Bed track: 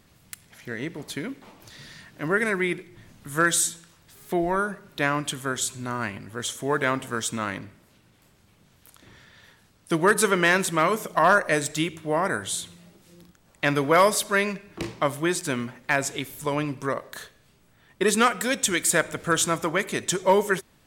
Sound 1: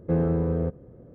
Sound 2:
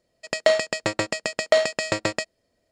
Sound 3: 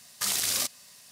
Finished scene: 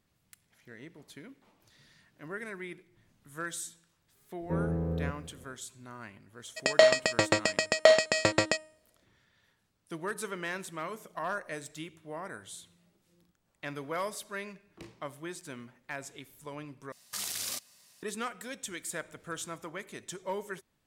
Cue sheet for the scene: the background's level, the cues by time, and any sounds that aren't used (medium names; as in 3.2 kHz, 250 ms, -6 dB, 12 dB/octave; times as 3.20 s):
bed track -16.5 dB
4.41 s: add 1 -8 dB + bit-crushed delay 171 ms, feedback 35%, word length 9-bit, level -14.5 dB
6.33 s: add 2 -1 dB + de-hum 311.6 Hz, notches 36
16.92 s: replace with 3 -8.5 dB